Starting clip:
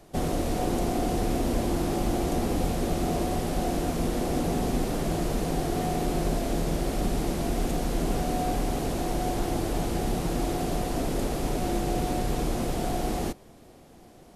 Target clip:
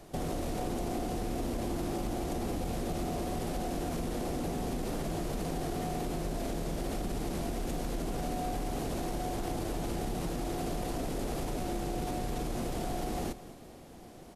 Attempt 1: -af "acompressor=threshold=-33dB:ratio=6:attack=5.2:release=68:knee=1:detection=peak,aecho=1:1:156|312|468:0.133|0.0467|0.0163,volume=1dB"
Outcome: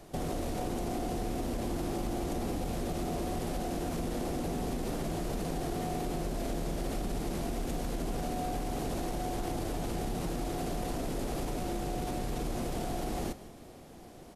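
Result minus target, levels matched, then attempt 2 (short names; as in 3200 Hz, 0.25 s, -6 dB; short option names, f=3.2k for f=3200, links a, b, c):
echo 60 ms early
-af "acompressor=threshold=-33dB:ratio=6:attack=5.2:release=68:knee=1:detection=peak,aecho=1:1:216|432|648:0.133|0.0467|0.0163,volume=1dB"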